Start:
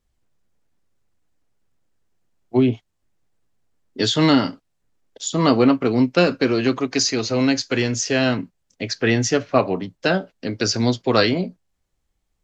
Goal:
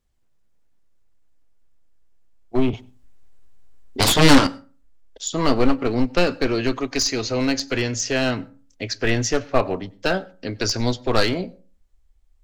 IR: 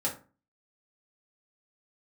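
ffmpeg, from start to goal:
-filter_complex "[0:a]aeval=exprs='clip(val(0),-1,0.188)':c=same,asubboost=boost=9:cutoff=51,asettb=1/sr,asplit=3[s0][s1][s2];[s0]atrim=end=2.734[s3];[s1]atrim=start=2.73:end=4.47,asetpts=PTS-STARTPTS,afade=t=in:d=0.004:c=qsin,afade=t=out:st=1.736:d=0.004:c=qsin,aeval=exprs='0.668*(cos(1*acos(clip(val(0)/0.668,-1,1)))-cos(1*PI/2))+0.335*(cos(7*acos(clip(val(0)/0.668,-1,1)))-cos(7*PI/2))+0.133*(cos(8*acos(clip(val(0)/0.668,-1,1)))-cos(8*PI/2))':c=same[s4];[s2]atrim=start=4.466[s5];[s3][s4]acrossfade=d=0.004:c1=hsin:c2=qsin[s6];[s6][s5]acrossfade=d=0.004:c1=qsin:c2=hsin,asplit=2[s7][s8];[1:a]atrim=start_sample=2205,adelay=93[s9];[s8][s9]afir=irnorm=-1:irlink=0,volume=0.0355[s10];[s7][s10]amix=inputs=2:normalize=0,volume=0.891"

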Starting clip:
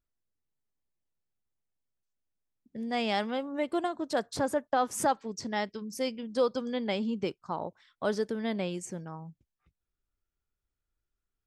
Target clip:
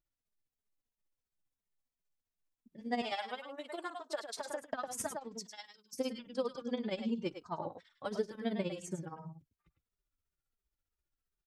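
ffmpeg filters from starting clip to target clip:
-filter_complex "[0:a]asettb=1/sr,asplit=3[s0][s1][s2];[s0]atrim=end=3.014[s3];[s1]atrim=start=3.01:end=4.62,asetpts=PTS-STARTPTS,afade=t=in:d=0.004:c=qsin,afade=t=out:st=1.606:d=0.004:c=qsin,highpass=640[s4];[s2]atrim=start=4.616[s5];[s3][s4]acrossfade=d=0.004:c1=hsin:c2=qsin[s6];[s6][s5]acrossfade=d=0.004:c1=qsin:c2=hsin,asettb=1/sr,asplit=3[s7][s8][s9];[s7]atrim=end=5.364[s10];[s8]atrim=start=5.36:end=5.93,asetpts=PTS-STARTPTS,afade=t=in:d=0.004:c=qsin,afade=t=out:st=0.566:d=0.004:c=qsin,aderivative[s11];[s9]atrim=start=5.926[s12];[s10][s11]acrossfade=d=0.004:c1=hsin:c2=qsin[s13];[s13][s12]acrossfade=d=0.004:c1=qsin:c2=hsin,acompressor=threshold=0.0355:ratio=6,tremolo=f=15:d=0.84,aecho=1:1:104:0.376,asplit=2[s14][s15];[s15]adelay=2.9,afreqshift=-2.9[s16];[s14][s16]amix=inputs=2:normalize=1,volume=1.33"

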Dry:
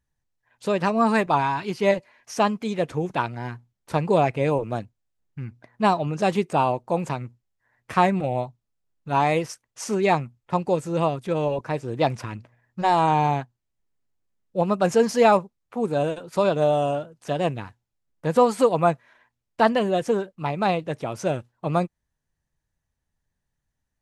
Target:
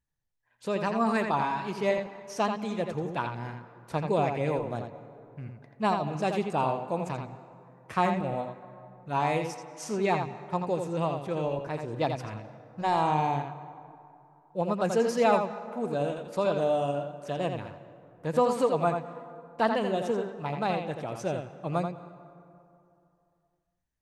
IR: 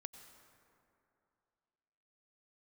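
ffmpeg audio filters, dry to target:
-filter_complex "[0:a]asplit=2[s0][s1];[1:a]atrim=start_sample=2205,lowpass=6300,adelay=84[s2];[s1][s2]afir=irnorm=-1:irlink=0,volume=0.944[s3];[s0][s3]amix=inputs=2:normalize=0,volume=0.447"

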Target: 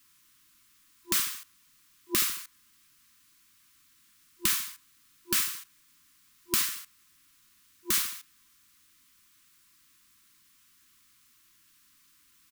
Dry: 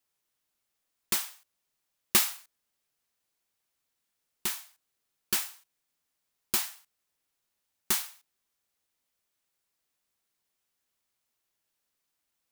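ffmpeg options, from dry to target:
-filter_complex "[0:a]afftfilt=real='re*(1-between(b*sr/4096,350,1000))':imag='im*(1-between(b*sr/4096,350,1000))':win_size=4096:overlap=0.75,acompressor=threshold=0.0126:ratio=6,asplit=2[s0][s1];[s1]adelay=75,lowpass=f=2100:p=1,volume=0.0891,asplit=2[s2][s3];[s3]adelay=75,lowpass=f=2100:p=1,volume=0.42,asplit=2[s4][s5];[s5]adelay=75,lowpass=f=2100:p=1,volume=0.42[s6];[s2][s4][s6]amix=inputs=3:normalize=0[s7];[s0][s7]amix=inputs=2:normalize=0,alimiter=level_in=20:limit=0.891:release=50:level=0:latency=1,volume=0.422"

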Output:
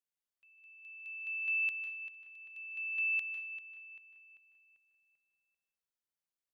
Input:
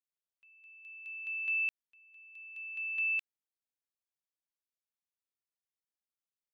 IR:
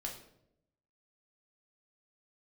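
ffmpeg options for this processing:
-filter_complex "[0:a]asplit=2[s0][s1];[s1]adelay=392,lowpass=f=3200:p=1,volume=0.316,asplit=2[s2][s3];[s3]adelay=392,lowpass=f=3200:p=1,volume=0.52,asplit=2[s4][s5];[s5]adelay=392,lowpass=f=3200:p=1,volume=0.52,asplit=2[s6][s7];[s7]adelay=392,lowpass=f=3200:p=1,volume=0.52,asplit=2[s8][s9];[s9]adelay=392,lowpass=f=3200:p=1,volume=0.52,asplit=2[s10][s11];[s11]adelay=392,lowpass=f=3200:p=1,volume=0.52[s12];[s0][s2][s4][s6][s8][s10][s12]amix=inputs=7:normalize=0,asplit=2[s13][s14];[s14]adynamicequalizer=threshold=0.00112:dfrequency=1200:dqfactor=2.5:tfrequency=1200:tqfactor=2.5:attack=5:release=100:ratio=0.375:range=3:mode=boostabove:tftype=bell[s15];[1:a]atrim=start_sample=2205,adelay=150[s16];[s15][s16]afir=irnorm=-1:irlink=0,volume=0.422[s17];[s13][s17]amix=inputs=2:normalize=0,volume=0.75"

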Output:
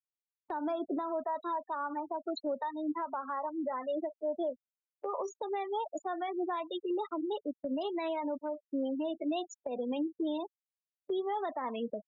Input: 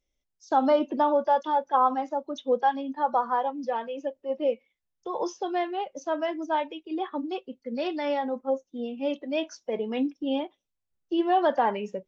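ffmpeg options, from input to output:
-filter_complex "[0:a]afftfilt=real='re*gte(hypot(re,im),0.0282)':imag='im*gte(hypot(re,im),0.0282)':win_size=1024:overlap=0.75,agate=range=0.355:threshold=0.00355:ratio=16:detection=peak,acrossover=split=150[s0][s1];[s1]acompressor=threshold=0.0178:ratio=5[s2];[s0][s2]amix=inputs=2:normalize=0,alimiter=level_in=2.82:limit=0.0631:level=0:latency=1:release=284,volume=0.355,asetrate=49501,aresample=44100,atempo=0.890899,volume=2.11"

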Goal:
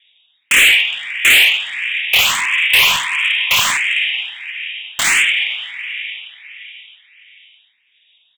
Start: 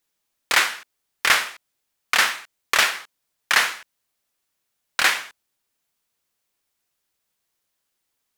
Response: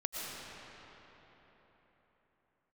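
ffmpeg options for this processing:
-filter_complex "[0:a]aecho=1:1:108:0.133,asplit=2[s0][s1];[1:a]atrim=start_sample=2205[s2];[s1][s2]afir=irnorm=-1:irlink=0,volume=0.106[s3];[s0][s3]amix=inputs=2:normalize=0,lowpass=f=3200:t=q:w=0.5098,lowpass=f=3200:t=q:w=0.6013,lowpass=f=3200:t=q:w=0.9,lowpass=f=3200:t=q:w=2.563,afreqshift=-3800,aexciter=amount=11.3:drive=8.8:freq=2100,asoftclip=type=tanh:threshold=0.335,asettb=1/sr,asplit=3[s4][s5][s6];[s4]atrim=end=2.274[s7];[s5]atrim=start=2.27:end=3.77,asetpts=PTS-STARTPTS,afade=t=in:d=0.004:c=qsin,afade=t=out:st=1.496:d=0.004:c=qsin,highpass=f=1000:t=q:w=10[s8];[s6]atrim=start=3.766[s9];[s7][s8]acrossfade=d=0.004:c1=hsin:c2=qsin[s10];[s10][s9]acrossfade=d=0.004:c1=qsin:c2=hsin,asoftclip=type=hard:threshold=0.2,asplit=2[s11][s12];[s12]afreqshift=1.5[s13];[s11][s13]amix=inputs=2:normalize=1,volume=2.24"

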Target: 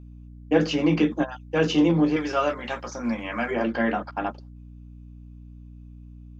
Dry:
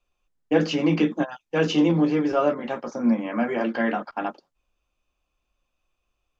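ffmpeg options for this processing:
-filter_complex "[0:a]asettb=1/sr,asplit=3[s0][s1][s2];[s0]atrim=end=2.164[s3];[s1]atrim=start=2.16:end=3.51,asetpts=PTS-STARTPTS,afade=t=in:d=0.004:c=qsin,afade=t=out:st=1.346:d=0.004:c=qsin,tiltshelf=f=970:g=-8[s4];[s2]atrim=start=3.506[s5];[s3][s4]acrossfade=d=0.004:c1=hsin:c2=qsin[s6];[s6][s5]acrossfade=d=0.004:c1=qsin:c2=hsin,aeval=exprs='val(0)+0.00794*(sin(2*PI*60*n/s)+sin(2*PI*2*60*n/s)/2+sin(2*PI*3*60*n/s)/3+sin(2*PI*4*60*n/s)/4+sin(2*PI*5*60*n/s)/5)':c=same"

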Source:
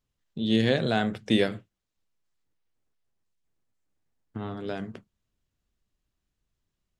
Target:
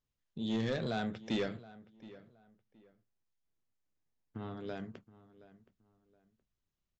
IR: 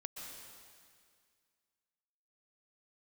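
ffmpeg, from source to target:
-filter_complex "[0:a]aresample=16000,asoftclip=type=tanh:threshold=0.106,aresample=44100,asplit=2[s0][s1];[s1]adelay=721,lowpass=f=2400:p=1,volume=0.126,asplit=2[s2][s3];[s3]adelay=721,lowpass=f=2400:p=1,volume=0.27[s4];[s0][s2][s4]amix=inputs=3:normalize=0,volume=0.422"

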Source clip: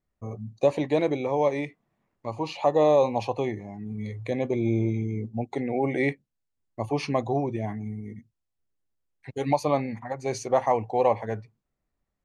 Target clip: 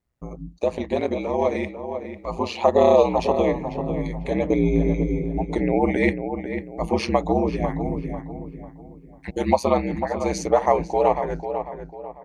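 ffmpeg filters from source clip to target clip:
-filter_complex "[0:a]dynaudnorm=f=320:g=9:m=2.51,aeval=exprs='val(0)*sin(2*PI*60*n/s)':c=same,asplit=2[s0][s1];[s1]acompressor=threshold=0.01:ratio=6,volume=0.891[s2];[s0][s2]amix=inputs=2:normalize=0,asplit=2[s3][s4];[s4]adelay=496,lowpass=f=1900:p=1,volume=0.398,asplit=2[s5][s6];[s6]adelay=496,lowpass=f=1900:p=1,volume=0.38,asplit=2[s7][s8];[s8]adelay=496,lowpass=f=1900:p=1,volume=0.38,asplit=2[s9][s10];[s10]adelay=496,lowpass=f=1900:p=1,volume=0.38[s11];[s3][s5][s7][s9][s11]amix=inputs=5:normalize=0"

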